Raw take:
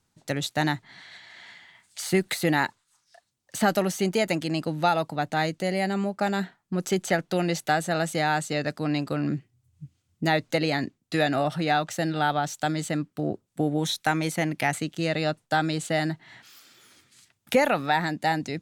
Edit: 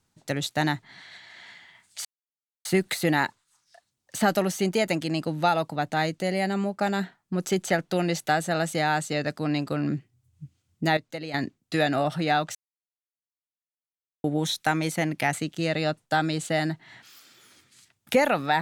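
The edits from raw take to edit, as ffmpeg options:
-filter_complex "[0:a]asplit=6[a][b][c][d][e][f];[a]atrim=end=2.05,asetpts=PTS-STARTPTS,afade=t=out:st=2.046:d=0.004:c=hsin,apad=pad_dur=0.6[g];[b]atrim=start=2.05:end=10.372,asetpts=PTS-STARTPTS,afade=t=in:d=0.004:c=hsin[h];[c]atrim=start=10.368:end=10.742,asetpts=PTS-STARTPTS,volume=-10.5dB[i];[d]atrim=start=10.738:end=11.95,asetpts=PTS-STARTPTS,afade=t=out:st=1.208:d=0.004:c=hsin[j];[e]atrim=start=11.95:end=13.64,asetpts=PTS-STARTPTS,volume=0[k];[f]atrim=start=13.64,asetpts=PTS-STARTPTS,afade=t=in:d=0.004:c=hsin[l];[g][h]concat=n=2:v=0:a=1[m];[m][i]acrossfade=d=0.004:c1=hsin:c2=hsin[n];[j][k][l]concat=n=3:v=0:a=1[o];[n][o]acrossfade=d=0.004:c1=hsin:c2=hsin"

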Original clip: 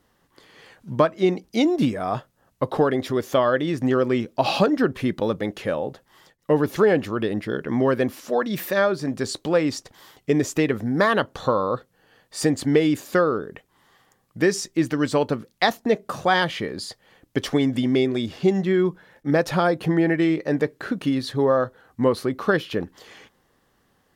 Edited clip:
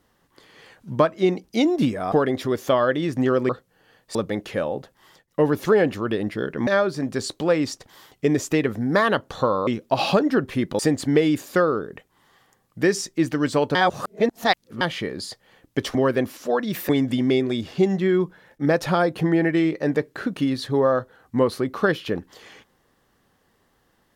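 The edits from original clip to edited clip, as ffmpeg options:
-filter_complex "[0:a]asplit=11[a][b][c][d][e][f][g][h][i][j][k];[a]atrim=end=2.122[l];[b]atrim=start=2.768:end=4.142[m];[c]atrim=start=11.718:end=12.382[n];[d]atrim=start=5.258:end=7.782[o];[e]atrim=start=8.718:end=11.722[p];[f]atrim=start=4.138:end=5.262[q];[g]atrim=start=12.378:end=15.342[r];[h]atrim=start=15.338:end=16.402,asetpts=PTS-STARTPTS,areverse[s];[i]atrim=start=16.398:end=17.542[t];[j]atrim=start=7.778:end=8.722[u];[k]atrim=start=17.538[v];[l][m]acrossfade=d=0.004:c1=hsin:c2=hsin[w];[w][n]acrossfade=d=0.004:c1=hsin:c2=hsin[x];[x][o]acrossfade=d=0.004:c1=hsin:c2=hsin[y];[y][p]acrossfade=d=0.004:c1=hsin:c2=hsin[z];[z][q]acrossfade=d=0.004:c1=hsin:c2=hsin[aa];[aa][r]acrossfade=d=0.004:c1=hsin:c2=hsin[ab];[ab][s]acrossfade=d=0.004:c1=hsin:c2=hsin[ac];[ac][t]acrossfade=d=0.004:c1=hsin:c2=hsin[ad];[ad][u]acrossfade=d=0.004:c1=hsin:c2=hsin[ae];[ae][v]acrossfade=d=0.004:c1=hsin:c2=hsin"

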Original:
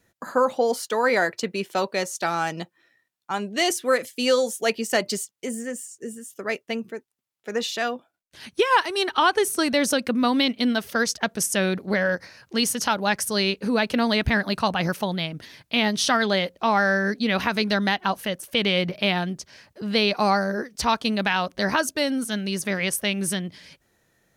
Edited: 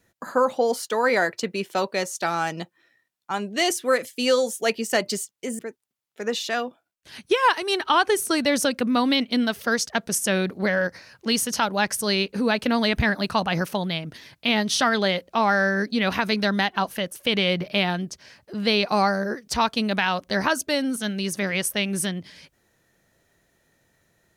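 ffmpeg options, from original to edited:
-filter_complex "[0:a]asplit=2[a][b];[a]atrim=end=5.592[c];[b]atrim=start=6.868[d];[c][d]acrossfade=d=0.004:c1=hsin:c2=hsin"

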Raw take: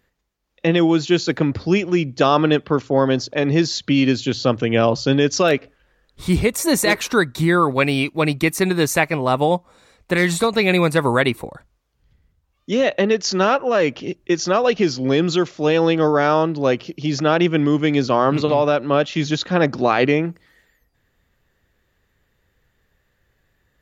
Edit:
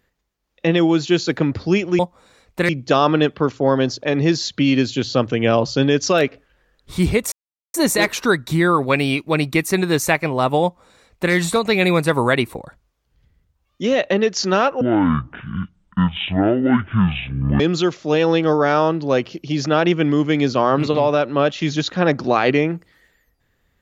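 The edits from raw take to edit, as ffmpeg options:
-filter_complex "[0:a]asplit=6[a][b][c][d][e][f];[a]atrim=end=1.992[g];[b]atrim=start=9.508:end=10.212[h];[c]atrim=start=1.988:end=6.62,asetpts=PTS-STARTPTS,afade=t=out:st=4.628:d=0.004:c=hsin,apad=pad_dur=0.42[i];[d]atrim=start=6.62:end=13.694,asetpts=PTS-STARTPTS,afade=t=in:d=0.004:c=hsin[j];[e]atrim=start=13.69:end=15.14,asetpts=PTS-STARTPTS,asetrate=22932,aresample=44100,atrim=end_sample=122971,asetpts=PTS-STARTPTS[k];[f]atrim=start=15.136[l];[g][h]acrossfade=d=0.004:c1=hsin:c2=hsin[m];[i][j]concat=n=2:v=0:a=1[n];[m][n]acrossfade=d=0.004:c1=hsin:c2=hsin[o];[o][k]acrossfade=d=0.004:c1=hsin:c2=hsin[p];[p][l]acrossfade=d=0.004:c1=hsin:c2=hsin"

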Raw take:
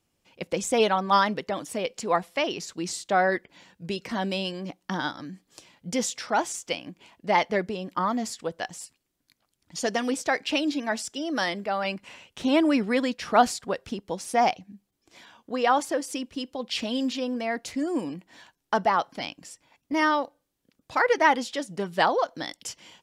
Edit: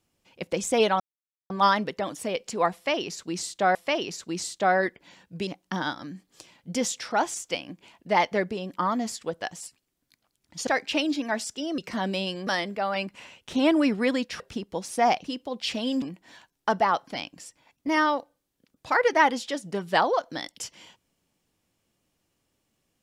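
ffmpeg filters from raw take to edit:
-filter_complex "[0:a]asplit=10[a][b][c][d][e][f][g][h][i][j];[a]atrim=end=1,asetpts=PTS-STARTPTS,afade=t=out:st=0.996:d=0.004:c=hsin,apad=pad_dur=0.5[k];[b]atrim=start=1:end=3.252,asetpts=PTS-STARTPTS,afade=t=in:d=0.004:c=hsin[l];[c]atrim=start=2.238:end=3.962[m];[d]atrim=start=4.648:end=9.852[n];[e]atrim=start=10.248:end=11.362[o];[f]atrim=start=3.958:end=4.652[p];[g]atrim=start=11.358:end=13.292[q];[h]atrim=start=13.758:end=14.602[r];[i]atrim=start=16.318:end=17.102[s];[j]atrim=start=18.068[t];[k][l]concat=n=2:v=0:a=1[u];[u][m]acrossfade=d=0.004:c1=hsin:c2=hsin[v];[v][n]acrossfade=d=0.004:c1=hsin:c2=hsin[w];[w][o]acrossfade=d=0.004:c1=hsin:c2=hsin[x];[x][p]acrossfade=d=0.004:c1=hsin:c2=hsin[y];[y][q]acrossfade=d=0.004:c1=hsin:c2=hsin[z];[z][r]acrossfade=d=0.004:c1=hsin:c2=hsin[aa];[aa][s]acrossfade=d=0.004:c1=hsin:c2=hsin[ab];[ab][t]acrossfade=d=0.004:c1=hsin:c2=hsin"

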